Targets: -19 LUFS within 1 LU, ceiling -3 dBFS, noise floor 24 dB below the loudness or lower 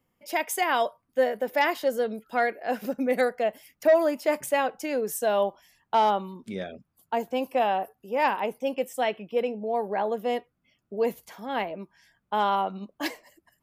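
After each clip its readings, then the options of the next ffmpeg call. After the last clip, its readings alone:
loudness -27.5 LUFS; peak -13.5 dBFS; loudness target -19.0 LUFS
-> -af "volume=8.5dB"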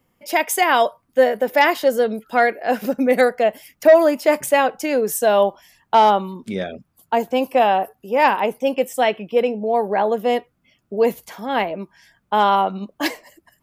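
loudness -19.0 LUFS; peak -5.0 dBFS; noise floor -68 dBFS

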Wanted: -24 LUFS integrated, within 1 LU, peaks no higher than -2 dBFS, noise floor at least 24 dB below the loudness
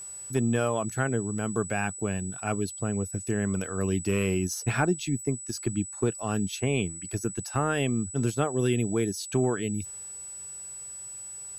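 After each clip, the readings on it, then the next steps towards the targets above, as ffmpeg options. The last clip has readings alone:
steady tone 7900 Hz; tone level -38 dBFS; loudness -29.0 LUFS; peak -14.5 dBFS; loudness target -24.0 LUFS
-> -af "bandreject=f=7.9k:w=30"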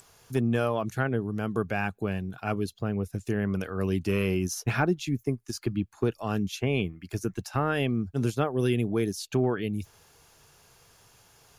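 steady tone none; loudness -29.0 LUFS; peak -15.0 dBFS; loudness target -24.0 LUFS
-> -af "volume=5dB"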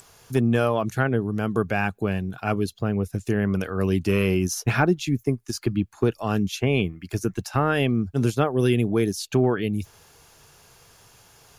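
loudness -24.0 LUFS; peak -10.0 dBFS; noise floor -54 dBFS

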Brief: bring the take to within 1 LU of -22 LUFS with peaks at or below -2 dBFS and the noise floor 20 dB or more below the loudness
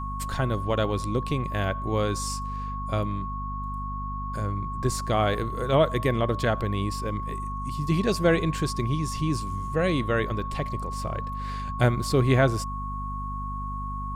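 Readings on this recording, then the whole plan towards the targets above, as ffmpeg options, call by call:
hum 50 Hz; harmonics up to 250 Hz; hum level -31 dBFS; steady tone 1100 Hz; tone level -33 dBFS; loudness -27.5 LUFS; peak -8.5 dBFS; loudness target -22.0 LUFS
-> -af "bandreject=f=50:t=h:w=6,bandreject=f=100:t=h:w=6,bandreject=f=150:t=h:w=6,bandreject=f=200:t=h:w=6,bandreject=f=250:t=h:w=6"
-af "bandreject=f=1.1k:w=30"
-af "volume=5.5dB"

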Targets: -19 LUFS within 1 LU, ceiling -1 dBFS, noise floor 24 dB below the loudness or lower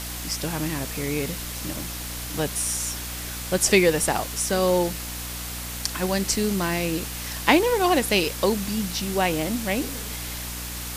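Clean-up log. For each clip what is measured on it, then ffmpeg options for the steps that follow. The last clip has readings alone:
hum 60 Hz; harmonics up to 300 Hz; hum level -34 dBFS; noise floor -33 dBFS; noise floor target -49 dBFS; loudness -24.5 LUFS; peak -2.0 dBFS; loudness target -19.0 LUFS
-> -af "bandreject=f=60:t=h:w=4,bandreject=f=120:t=h:w=4,bandreject=f=180:t=h:w=4,bandreject=f=240:t=h:w=4,bandreject=f=300:t=h:w=4"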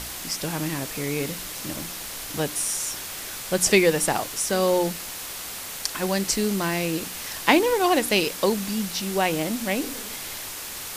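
hum none; noise floor -35 dBFS; noise floor target -49 dBFS
-> -af "afftdn=nr=14:nf=-35"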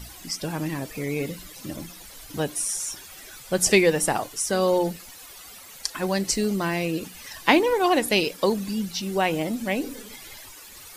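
noise floor -45 dBFS; noise floor target -49 dBFS
-> -af "afftdn=nr=6:nf=-45"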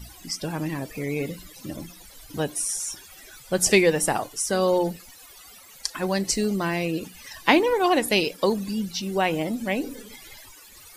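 noise floor -48 dBFS; noise floor target -49 dBFS
-> -af "afftdn=nr=6:nf=-48"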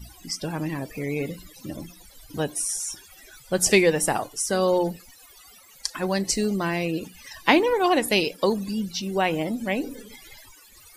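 noise floor -51 dBFS; loudness -24.5 LUFS; peak -1.5 dBFS; loudness target -19.0 LUFS
-> -af "volume=5.5dB,alimiter=limit=-1dB:level=0:latency=1"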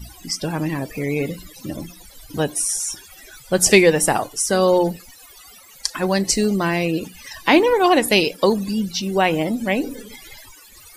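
loudness -19.0 LUFS; peak -1.0 dBFS; noise floor -46 dBFS

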